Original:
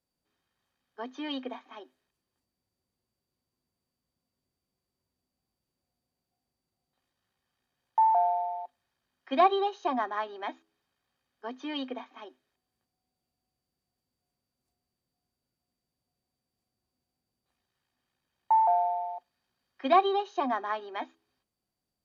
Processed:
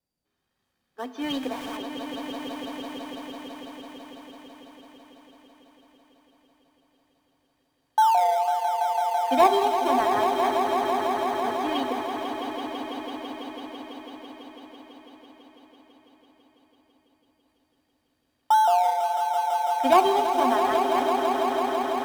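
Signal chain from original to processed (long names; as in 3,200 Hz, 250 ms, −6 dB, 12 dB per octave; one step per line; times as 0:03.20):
0:01.21–0:01.77: converter with a step at zero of −40 dBFS
automatic gain control gain up to 4 dB
in parallel at −12 dB: sample-and-hold swept by an LFO 25×, swing 60% 1.6 Hz
on the sum: four-comb reverb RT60 1.6 s, combs from 32 ms, DRR 13.5 dB
tape wow and flutter 33 cents
on a send: echo that builds up and dies away 166 ms, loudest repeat 5, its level −8.5 dB
on the sum: level −1 dB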